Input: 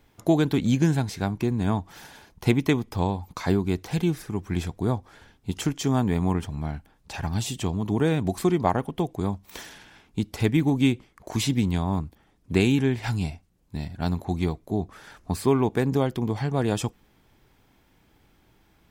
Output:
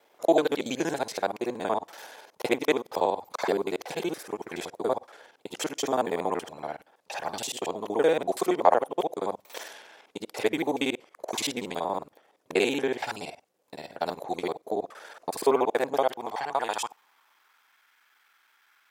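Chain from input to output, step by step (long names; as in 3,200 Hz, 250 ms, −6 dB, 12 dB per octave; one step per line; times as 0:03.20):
reversed piece by piece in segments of 47 ms
high-pass filter sweep 530 Hz → 1,400 Hz, 0:15.50–0:17.80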